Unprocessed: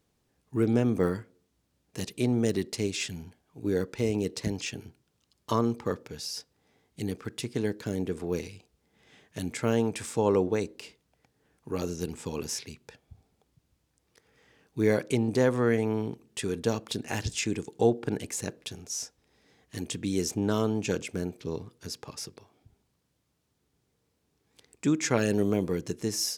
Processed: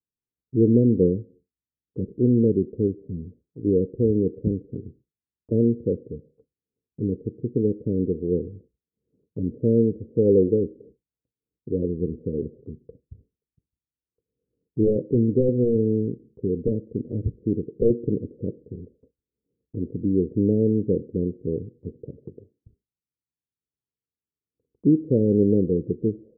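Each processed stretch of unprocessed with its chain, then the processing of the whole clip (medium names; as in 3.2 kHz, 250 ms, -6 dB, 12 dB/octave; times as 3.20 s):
14.81–18.30 s: integer overflow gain 14.5 dB + distance through air 470 m
whole clip: steep low-pass 520 Hz 72 dB/octave; expander -53 dBFS; trim +7.5 dB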